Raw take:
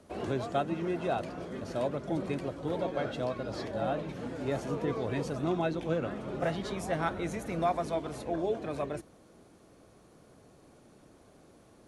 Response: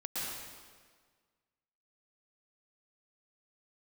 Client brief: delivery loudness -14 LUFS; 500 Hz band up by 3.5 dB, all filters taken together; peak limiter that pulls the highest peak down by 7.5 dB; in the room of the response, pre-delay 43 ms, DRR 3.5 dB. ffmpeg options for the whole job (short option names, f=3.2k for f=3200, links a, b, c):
-filter_complex "[0:a]equalizer=f=500:t=o:g=4.5,alimiter=limit=-23dB:level=0:latency=1,asplit=2[a][b];[1:a]atrim=start_sample=2205,adelay=43[c];[b][c]afir=irnorm=-1:irlink=0,volume=-7dB[d];[a][d]amix=inputs=2:normalize=0,volume=18dB"